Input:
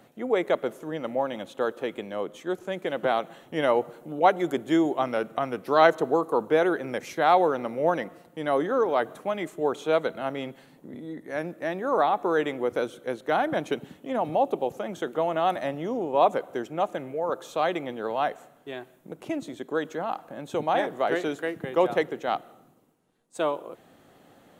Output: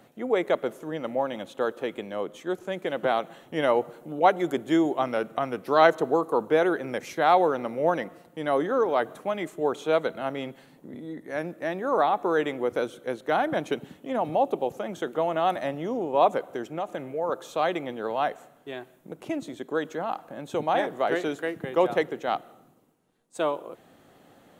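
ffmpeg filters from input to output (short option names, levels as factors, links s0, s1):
-filter_complex "[0:a]asettb=1/sr,asplit=3[s0][s1][s2];[s0]atrim=end=16.514[s3];[s1]atrim=start=16.51:end=17.16,asetpts=PTS-STARTPTS,afade=t=in:d=0.004:c=qsin,afade=t=out:st=0.646:d=0.004:c=qsin,acompressor=threshold=0.0501:ratio=4:attack=3.2:release=140:knee=1:detection=peak[s4];[s2]atrim=start=17.156[s5];[s3][s4]acrossfade=d=0.004:c1=hsin:c2=qsin[s6];[s6][s5]acrossfade=d=0.004:c1=qsin:c2=hsin"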